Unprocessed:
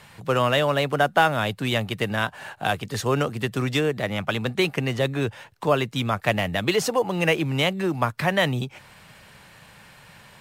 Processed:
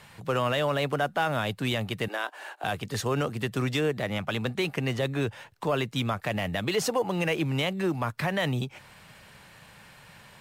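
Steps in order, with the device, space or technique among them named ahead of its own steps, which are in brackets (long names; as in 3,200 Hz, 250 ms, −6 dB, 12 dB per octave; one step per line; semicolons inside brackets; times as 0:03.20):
soft clipper into limiter (soft clipping −6.5 dBFS, distortion −27 dB; brickwall limiter −15 dBFS, peak gain reduction 7 dB)
0:02.08–0:02.64: elliptic high-pass filter 310 Hz, stop band 60 dB
level −2.5 dB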